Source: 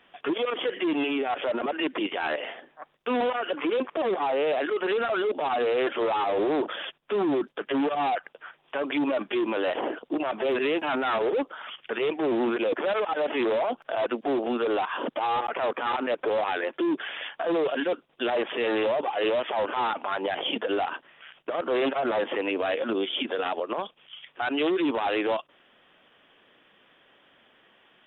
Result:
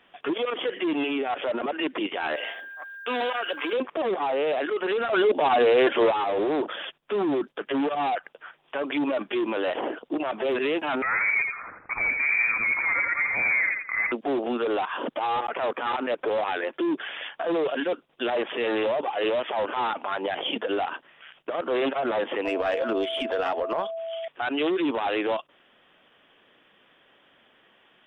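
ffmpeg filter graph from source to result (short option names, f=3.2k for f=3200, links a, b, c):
-filter_complex "[0:a]asettb=1/sr,asplit=3[a][b][c];[a]atrim=end=2.364[d];[b]atrim=start=2.36:end=3.73,asetpts=PTS-STARTPTS,afade=t=in:d=0.004:c=qsin,afade=t=out:st=1.366:d=0.004:c=qsin,aemphasis=mode=production:type=riaa,aeval=exprs='val(0)+0.0126*sin(2*PI*1600*n/s)':c=same[e];[c]atrim=start=3.726[f];[d][e]acrossfade=d=0.004:c1=hsin:c2=qsin[g];[g][f]acrossfade=d=0.004:c1=qsin:c2=hsin,asettb=1/sr,asplit=3[h][i][j];[h]atrim=end=5.134[k];[i]atrim=start=5.13:end=6.11,asetpts=PTS-STARTPTS,afade=t=in:d=0.004:c=qsin,afade=t=out:st=0.976:d=0.004:c=qsin,bandreject=f=1.3k:w=9.8,acontrast=52[l];[j]atrim=start=6.106[m];[k][l]acrossfade=d=0.004:c1=hsin:c2=qsin[n];[n][m]acrossfade=d=0.004:c1=qsin:c2=hsin,asettb=1/sr,asplit=3[o][p][q];[o]atrim=end=11.024[r];[p]atrim=start=11.02:end=14.12,asetpts=PTS-STARTPTS,afade=t=in:d=0.004:c=qsin,afade=t=out:st=3.096:d=0.004:c=qsin,lowpass=f=2.3k:t=q:w=0.5098,lowpass=f=2.3k:t=q:w=0.6013,lowpass=f=2.3k:t=q:w=0.9,lowpass=f=2.3k:t=q:w=2.563,afreqshift=-2700,aecho=1:1:85|170|255|340:0.562|0.157|0.0441|0.0123,atrim=end_sample=136710[s];[q]atrim=start=14.116[t];[r][s]acrossfade=d=0.004:c1=hsin:c2=qsin[u];[u][t]acrossfade=d=0.004:c1=qsin:c2=hsin,asettb=1/sr,asplit=3[v][w][x];[v]atrim=end=22.454[y];[w]atrim=start=22.45:end=24.28,asetpts=PTS-STARTPTS,afade=t=in:d=0.004:c=qsin,afade=t=out:st=1.826:d=0.004:c=qsin,asplit=2[z][aa];[aa]highpass=f=720:p=1,volume=12dB,asoftclip=type=tanh:threshold=-16dB[ab];[z][ab]amix=inputs=2:normalize=0,lowpass=f=1.5k:p=1,volume=-6dB,aeval=exprs='val(0)+0.0316*sin(2*PI*660*n/s)':c=same[ac];[x]atrim=start=24.276[ad];[y][ac]acrossfade=d=0.004:c1=hsin:c2=qsin[ae];[ae][ad]acrossfade=d=0.004:c1=qsin:c2=hsin"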